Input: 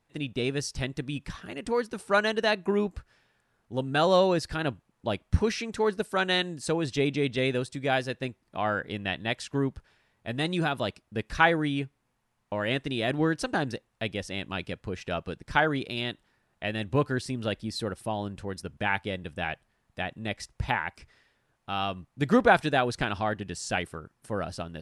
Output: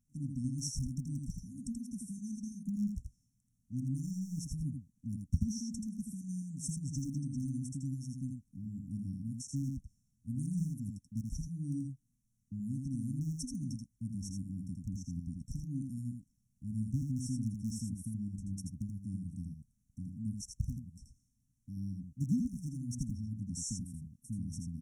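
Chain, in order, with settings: rattle on loud lows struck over -31 dBFS, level -19 dBFS; compression 2.5:1, threshold -26 dBFS, peak gain reduction 8.5 dB; brick-wall FIR band-stop 280–5400 Hz; delay 82 ms -4.5 dB; trim -2 dB

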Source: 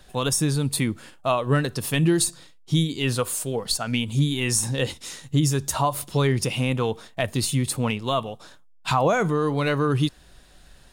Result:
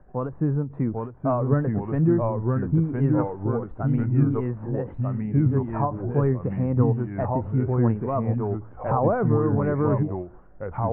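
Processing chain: ever faster or slower copies 778 ms, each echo -2 st, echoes 2; Bessel low-pass 890 Hz, order 8; endings held to a fixed fall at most 170 dB/s

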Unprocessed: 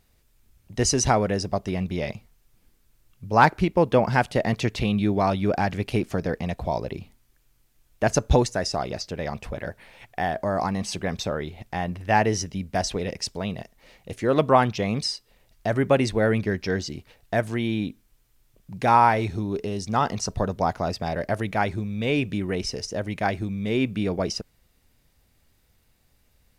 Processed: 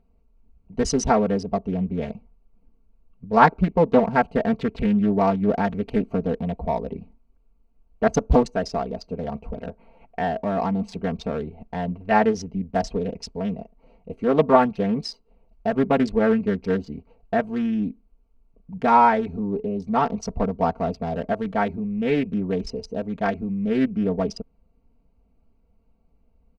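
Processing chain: local Wiener filter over 25 samples; low-pass 2.8 kHz 6 dB/octave; comb 4.4 ms, depth 87%; loudspeaker Doppler distortion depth 0.43 ms

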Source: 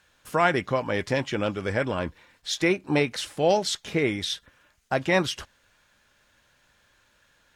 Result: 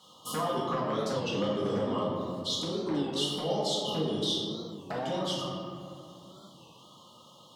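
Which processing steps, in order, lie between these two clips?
reverb removal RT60 0.68 s; compression 5:1, threshold -38 dBFS, peak gain reduction 19.5 dB; brick-wall FIR band-stop 1.3–2.8 kHz; bass shelf 180 Hz +8 dB; wavefolder -28 dBFS; high-pass 130 Hz 24 dB/octave; peak limiter -33.5 dBFS, peak gain reduction 8 dB; peaking EQ 1.9 kHz +8.5 dB 2.2 oct; reverberation RT60 2.5 s, pre-delay 4 ms, DRR -7.5 dB; warped record 33 1/3 rpm, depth 160 cents; trim +2.5 dB

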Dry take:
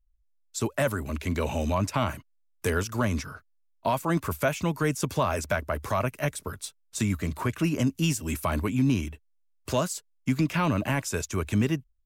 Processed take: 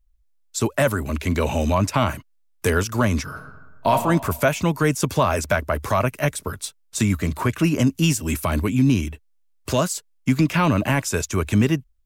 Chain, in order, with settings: 3.24–3.92 s: reverb throw, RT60 1.2 s, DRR 2.5 dB; 8.35–9.79 s: dynamic bell 980 Hz, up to -4 dB, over -40 dBFS, Q 0.77; trim +6.5 dB

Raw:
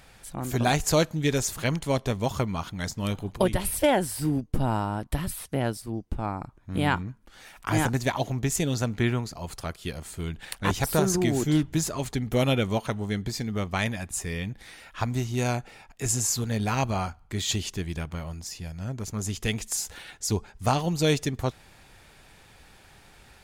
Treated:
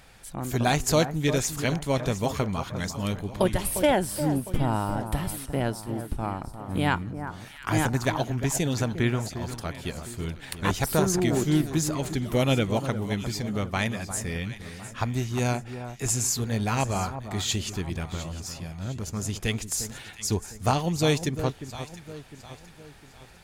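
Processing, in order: echo whose repeats swap between lows and highs 353 ms, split 1.6 kHz, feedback 64%, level -10 dB

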